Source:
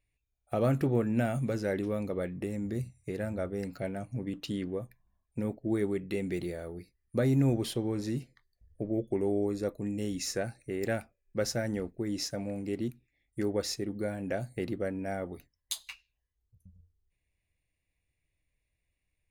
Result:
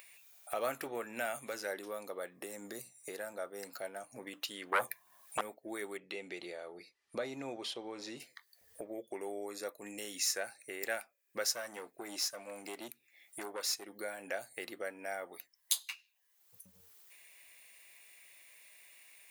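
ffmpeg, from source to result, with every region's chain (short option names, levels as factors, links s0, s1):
-filter_complex "[0:a]asettb=1/sr,asplit=3[s0][s1][s2];[s0]atrim=end=1.674[s3];[s1]atrim=start=1.67:end=4.21,asetpts=PTS-STARTPTS,afade=t=in:d=0.004:c=qsin,afade=t=out:st=2.536:d=0.004:c=qsin,highpass=95,equalizer=f=2300:t=o:w=0.76:g=-7.5[s4];[s2]atrim=start=4.206[s5];[s3][s4]acrossfade=d=0.004:c1=hsin:c2=qsin[s6];[s6][s5]acrossfade=d=0.004:c1=qsin:c2=hsin,asettb=1/sr,asplit=3[s7][s8][s9];[s7]atrim=end=4.724[s10];[s8]atrim=start=4.72:end=5.41,asetpts=PTS-STARTPTS,afade=t=in:d=0.004:c=qsin,afade=t=out:st=0.686:d=0.004:c=qsin,equalizer=f=11000:w=5.4:g=3,aeval=exprs='0.0841*sin(PI/2*4.47*val(0)/0.0841)':c=same[s11];[s9]atrim=start=5.406[s12];[s10][s11]acrossfade=d=0.004:c1=hsin:c2=qsin[s13];[s13][s12]acrossfade=d=0.004:c1=qsin:c2=hsin,asettb=1/sr,asplit=3[s14][s15][s16];[s14]atrim=end=5.974[s17];[s15]atrim=start=5.97:end=8.2,asetpts=PTS-STARTPTS,afade=t=in:d=0.004:c=qsin,afade=t=out:st=2.226:d=0.004:c=qsin,lowpass=4400,equalizer=f=1700:t=o:w=0.8:g=-6.5[s18];[s16]atrim=start=8.196[s19];[s17][s18]acrossfade=d=0.004:c1=hsin:c2=qsin[s20];[s20][s19]acrossfade=d=0.004:c1=qsin:c2=hsin,asettb=1/sr,asplit=3[s21][s22][s23];[s21]atrim=end=11.514[s24];[s22]atrim=start=11.51:end=13.86,asetpts=PTS-STARTPTS,afade=t=in:d=0.004:c=qsin,afade=t=out:st=2.346:d=0.004:c=qsin,bandreject=f=1900:w=23,aeval=exprs='(tanh(22.4*val(0)+0.35)-tanh(0.35))/22.4':c=same[s25];[s23]atrim=start=13.856[s26];[s24][s25]acrossfade=d=0.004:c1=hsin:c2=qsin[s27];[s27][s26]acrossfade=d=0.004:c1=qsin:c2=hsin,highpass=840,highshelf=f=11000:g=11,acompressor=mode=upward:threshold=0.0112:ratio=2.5,volume=1.12"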